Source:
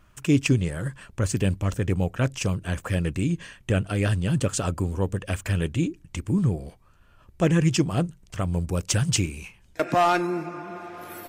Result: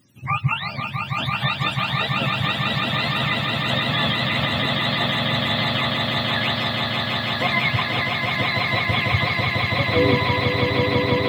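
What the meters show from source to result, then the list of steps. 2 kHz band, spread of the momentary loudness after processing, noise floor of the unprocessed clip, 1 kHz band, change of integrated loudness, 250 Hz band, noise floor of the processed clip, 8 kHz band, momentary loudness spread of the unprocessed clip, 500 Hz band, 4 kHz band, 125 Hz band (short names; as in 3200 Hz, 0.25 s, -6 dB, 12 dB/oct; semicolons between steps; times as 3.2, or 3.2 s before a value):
+13.5 dB, 3 LU, -56 dBFS, +7.0 dB, +5.0 dB, -0.5 dB, -31 dBFS, -14.0 dB, 12 LU, +4.0 dB, +15.5 dB, 0.0 dB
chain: spectrum mirrored in octaves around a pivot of 590 Hz; swelling echo 0.165 s, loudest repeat 8, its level -5 dB; gain +1 dB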